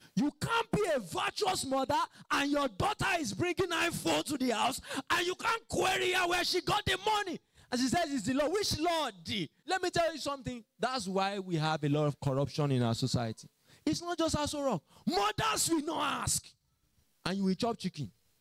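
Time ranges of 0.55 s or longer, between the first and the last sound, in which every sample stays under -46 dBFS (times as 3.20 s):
16.49–17.25 s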